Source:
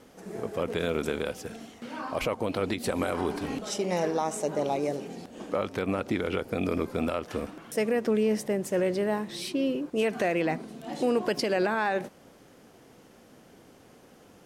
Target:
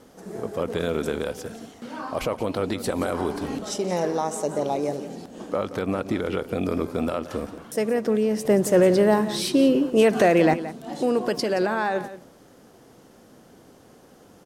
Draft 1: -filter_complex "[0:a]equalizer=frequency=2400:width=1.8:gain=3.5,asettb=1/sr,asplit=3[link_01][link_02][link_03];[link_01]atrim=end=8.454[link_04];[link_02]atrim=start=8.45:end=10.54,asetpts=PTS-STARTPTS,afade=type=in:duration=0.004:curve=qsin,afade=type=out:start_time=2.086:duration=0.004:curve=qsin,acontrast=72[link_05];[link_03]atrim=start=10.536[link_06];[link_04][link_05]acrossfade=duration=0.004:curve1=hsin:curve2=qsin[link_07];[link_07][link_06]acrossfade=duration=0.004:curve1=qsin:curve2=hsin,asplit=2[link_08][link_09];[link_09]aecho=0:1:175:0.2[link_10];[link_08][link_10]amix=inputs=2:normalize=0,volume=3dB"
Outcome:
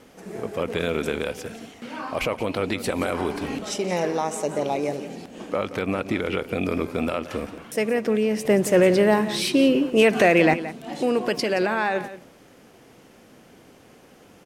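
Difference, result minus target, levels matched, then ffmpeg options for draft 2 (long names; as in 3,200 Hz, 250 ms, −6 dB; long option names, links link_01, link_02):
2,000 Hz band +4.5 dB
-filter_complex "[0:a]equalizer=frequency=2400:width=1.8:gain=-5.5,asettb=1/sr,asplit=3[link_01][link_02][link_03];[link_01]atrim=end=8.454[link_04];[link_02]atrim=start=8.45:end=10.54,asetpts=PTS-STARTPTS,afade=type=in:duration=0.004:curve=qsin,afade=type=out:start_time=2.086:duration=0.004:curve=qsin,acontrast=72[link_05];[link_03]atrim=start=10.536[link_06];[link_04][link_05]acrossfade=duration=0.004:curve1=hsin:curve2=qsin[link_07];[link_07][link_06]acrossfade=duration=0.004:curve1=qsin:curve2=hsin,asplit=2[link_08][link_09];[link_09]aecho=0:1:175:0.2[link_10];[link_08][link_10]amix=inputs=2:normalize=0,volume=3dB"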